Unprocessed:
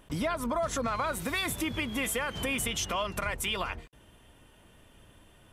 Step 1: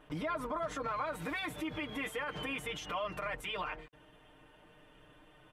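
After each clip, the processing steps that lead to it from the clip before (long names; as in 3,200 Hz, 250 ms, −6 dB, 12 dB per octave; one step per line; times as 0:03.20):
comb filter 6.6 ms, depth 97%
brickwall limiter −25 dBFS, peak gain reduction 9 dB
bass and treble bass −7 dB, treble −15 dB
level −2 dB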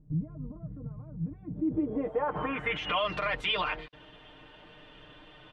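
low-pass filter sweep 150 Hz → 4,100 Hz, 0:01.36–0:03.09
level +6.5 dB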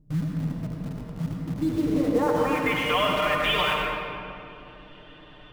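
in parallel at −7 dB: bit reduction 6 bits
on the sum: convolution reverb RT60 2.7 s, pre-delay 75 ms, DRR −1 dB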